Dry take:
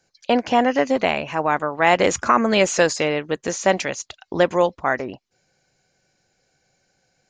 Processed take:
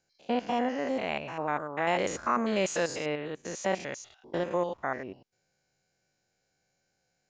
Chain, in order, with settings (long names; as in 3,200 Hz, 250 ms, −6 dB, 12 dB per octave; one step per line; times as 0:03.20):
spectrum averaged block by block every 100 ms
level −9 dB